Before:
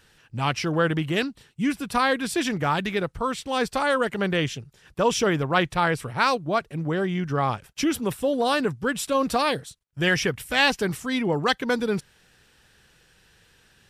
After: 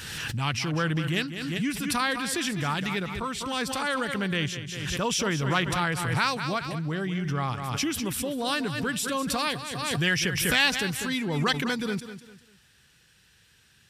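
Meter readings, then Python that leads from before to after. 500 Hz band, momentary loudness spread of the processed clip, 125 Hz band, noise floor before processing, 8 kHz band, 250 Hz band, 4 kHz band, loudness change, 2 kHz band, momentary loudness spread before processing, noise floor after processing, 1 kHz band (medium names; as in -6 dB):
-8.0 dB, 6 LU, 0.0 dB, -60 dBFS, +3.0 dB, -3.0 dB, +0.5 dB, -3.0 dB, -1.5 dB, 6 LU, -61 dBFS, -5.0 dB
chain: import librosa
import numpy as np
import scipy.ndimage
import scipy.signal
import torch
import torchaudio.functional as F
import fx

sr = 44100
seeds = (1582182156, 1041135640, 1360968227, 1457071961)

p1 = scipy.signal.sosfilt(scipy.signal.butter(2, 67.0, 'highpass', fs=sr, output='sos'), x)
p2 = fx.peak_eq(p1, sr, hz=560.0, db=-10.0, octaves=2.3)
p3 = p2 + fx.echo_feedback(p2, sr, ms=198, feedback_pct=33, wet_db=-11.5, dry=0)
y = fx.pre_swell(p3, sr, db_per_s=31.0)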